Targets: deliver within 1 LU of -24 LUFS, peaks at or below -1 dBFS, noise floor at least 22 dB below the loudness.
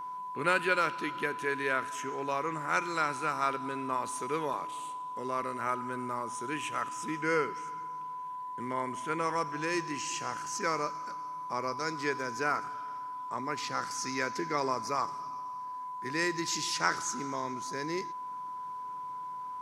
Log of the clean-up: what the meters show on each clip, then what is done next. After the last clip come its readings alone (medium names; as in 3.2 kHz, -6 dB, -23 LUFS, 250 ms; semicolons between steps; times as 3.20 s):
steady tone 1 kHz; tone level -37 dBFS; loudness -33.5 LUFS; peak level -10.5 dBFS; loudness target -24.0 LUFS
-> band-stop 1 kHz, Q 30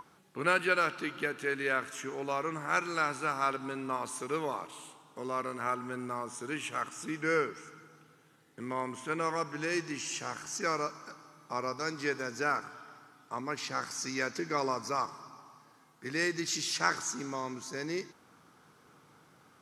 steady tone not found; loudness -33.5 LUFS; peak level -11.0 dBFS; loudness target -24.0 LUFS
-> trim +9.5 dB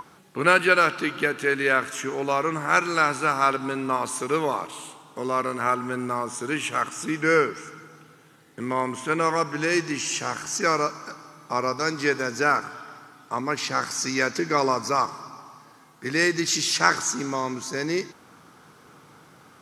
loudness -24.0 LUFS; peak level -1.5 dBFS; noise floor -53 dBFS